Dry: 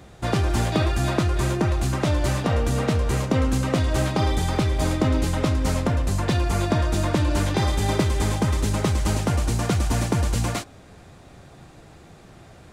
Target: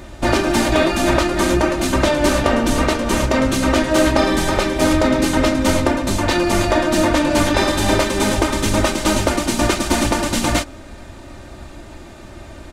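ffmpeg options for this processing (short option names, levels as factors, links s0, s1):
-filter_complex "[0:a]asplit=3[s0][s1][s2];[s1]asetrate=22050,aresample=44100,atempo=2,volume=0.708[s3];[s2]asetrate=37084,aresample=44100,atempo=1.18921,volume=0.178[s4];[s0][s3][s4]amix=inputs=3:normalize=0,afftfilt=real='re*lt(hypot(re,im),0.631)':imag='im*lt(hypot(re,im),0.631)':win_size=1024:overlap=0.75,aecho=1:1:3.3:0.62,volume=2.37"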